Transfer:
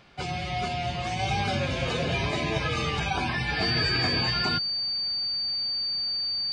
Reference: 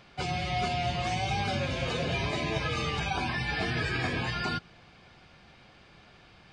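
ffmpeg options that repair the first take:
-af "bandreject=f=4.6k:w=30,asetnsamples=n=441:p=0,asendcmd='1.19 volume volume -3dB',volume=0dB"

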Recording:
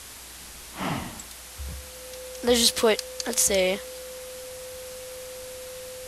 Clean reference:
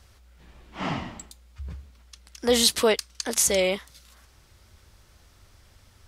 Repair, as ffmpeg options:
-af "bandreject=f=510:w=30,afwtdn=0.0089"

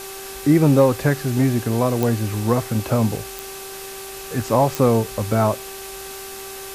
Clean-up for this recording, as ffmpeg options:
-af "adeclick=t=4,bandreject=f=388.3:t=h:w=4,bandreject=f=776.6:t=h:w=4,bandreject=f=1.1649k:t=h:w=4,bandreject=f=1.5532k:t=h:w=4,bandreject=f=2.6k:w=30,afwtdn=0.018"

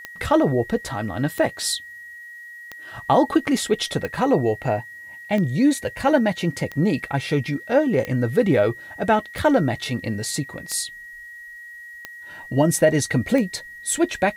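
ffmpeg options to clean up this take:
-af "adeclick=t=4,bandreject=f=1.9k:w=30,agate=range=-21dB:threshold=-32dB"

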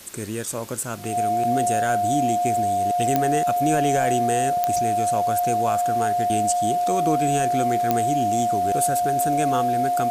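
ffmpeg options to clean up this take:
-af "adeclick=t=4,bandreject=f=710:w=30,afwtdn=0.0071"

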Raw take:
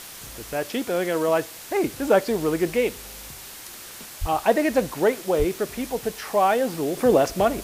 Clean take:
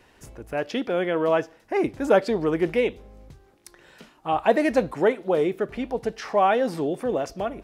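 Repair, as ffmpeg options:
-filter_complex "[0:a]asplit=3[a][b][c];[a]afade=t=out:st=4.2:d=0.02[d];[b]highpass=f=140:w=0.5412,highpass=f=140:w=1.3066,afade=t=in:st=4.2:d=0.02,afade=t=out:st=4.32:d=0.02[e];[c]afade=t=in:st=4.32:d=0.02[f];[d][e][f]amix=inputs=3:normalize=0,asplit=3[g][h][i];[g]afade=t=out:st=5.38:d=0.02[j];[h]highpass=f=140:w=0.5412,highpass=f=140:w=1.3066,afade=t=in:st=5.38:d=0.02,afade=t=out:st=5.5:d=0.02[k];[i]afade=t=in:st=5.5:d=0.02[l];[j][k][l]amix=inputs=3:normalize=0,afwtdn=0.011,asetnsamples=n=441:p=0,asendcmd='6.97 volume volume -8dB',volume=0dB"

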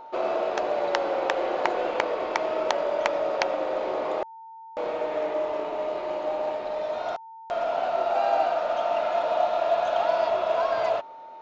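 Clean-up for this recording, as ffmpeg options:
-af "bandreject=f=900:w=30"

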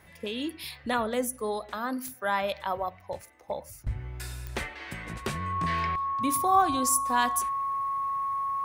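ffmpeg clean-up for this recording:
-af "adeclick=t=4,bandreject=f=1.1k:w=30"

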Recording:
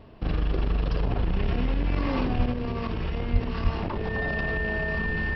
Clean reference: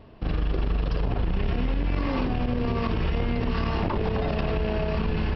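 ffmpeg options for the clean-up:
-filter_complex "[0:a]bandreject=f=1.8k:w=30,asplit=3[a][b][c];[a]afade=t=out:st=2.36:d=0.02[d];[b]highpass=f=140:w=0.5412,highpass=f=140:w=1.3066,afade=t=in:st=2.36:d=0.02,afade=t=out:st=2.48:d=0.02[e];[c]afade=t=in:st=2.48:d=0.02[f];[d][e][f]amix=inputs=3:normalize=0,asplit=3[g][h][i];[g]afade=t=out:st=3.32:d=0.02[j];[h]highpass=f=140:w=0.5412,highpass=f=140:w=1.3066,afade=t=in:st=3.32:d=0.02,afade=t=out:st=3.44:d=0.02[k];[i]afade=t=in:st=3.44:d=0.02[l];[j][k][l]amix=inputs=3:normalize=0,asplit=3[m][n][o];[m]afade=t=out:st=3.63:d=0.02[p];[n]highpass=f=140:w=0.5412,highpass=f=140:w=1.3066,afade=t=in:st=3.63:d=0.02,afade=t=out:st=3.75:d=0.02[q];[o]afade=t=in:st=3.75:d=0.02[r];[p][q][r]amix=inputs=3:normalize=0,asetnsamples=n=441:p=0,asendcmd='2.52 volume volume 4dB',volume=0dB"

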